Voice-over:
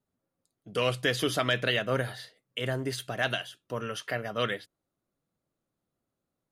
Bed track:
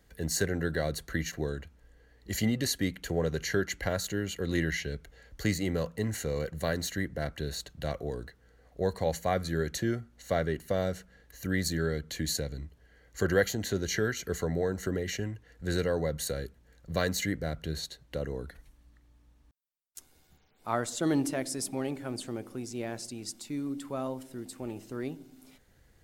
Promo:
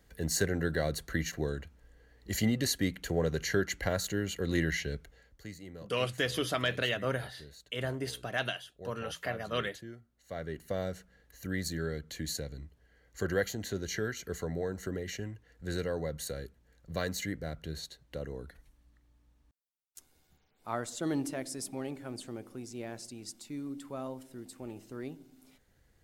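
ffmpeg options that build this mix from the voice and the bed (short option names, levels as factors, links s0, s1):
-filter_complex "[0:a]adelay=5150,volume=0.631[s0];[1:a]volume=3.55,afade=t=out:st=4.95:d=0.46:silence=0.158489,afade=t=in:st=10.23:d=0.45:silence=0.266073[s1];[s0][s1]amix=inputs=2:normalize=0"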